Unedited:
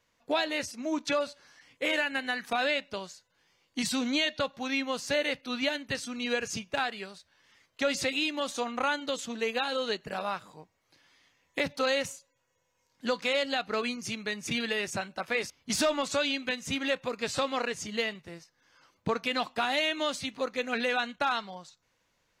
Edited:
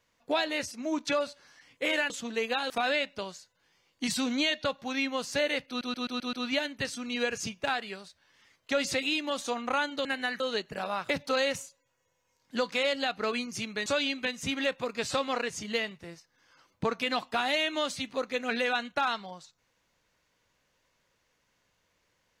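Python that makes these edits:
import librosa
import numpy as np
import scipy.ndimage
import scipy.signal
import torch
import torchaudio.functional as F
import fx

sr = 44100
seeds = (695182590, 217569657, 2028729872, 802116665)

y = fx.edit(x, sr, fx.swap(start_s=2.1, length_s=0.35, other_s=9.15, other_length_s=0.6),
    fx.stutter(start_s=5.43, slice_s=0.13, count=6),
    fx.cut(start_s=10.44, length_s=1.15),
    fx.cut(start_s=14.36, length_s=1.74), tone=tone)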